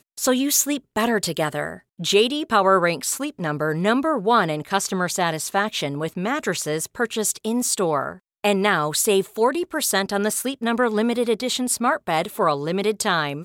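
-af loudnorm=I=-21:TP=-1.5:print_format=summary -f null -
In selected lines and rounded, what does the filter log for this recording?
Input Integrated:    -21.7 LUFS
Input True Peak:      -4.4 dBTP
Input LRA:             2.2 LU
Input Threshold:     -31.8 LUFS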